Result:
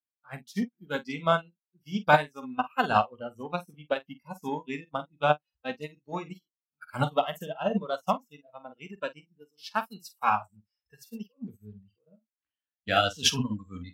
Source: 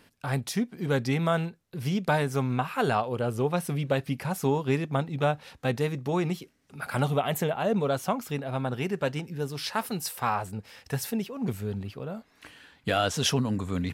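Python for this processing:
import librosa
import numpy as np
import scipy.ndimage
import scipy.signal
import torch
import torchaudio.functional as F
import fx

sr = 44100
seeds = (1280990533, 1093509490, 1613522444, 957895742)

p1 = fx.noise_reduce_blind(x, sr, reduce_db=22)
p2 = fx.graphic_eq_15(p1, sr, hz=(160, 400, 10000), db=(-4, -10, -8))
p3 = fx.cheby_harmonics(p2, sr, harmonics=(7,), levels_db=(-39,), full_scale_db=-14.5)
p4 = p3 + fx.room_early_taps(p3, sr, ms=(20, 47), db=(-15.5, -7.0), dry=0)
p5 = fx.upward_expand(p4, sr, threshold_db=-45.0, expansion=2.5)
y = F.gain(torch.from_numpy(p5), 8.5).numpy()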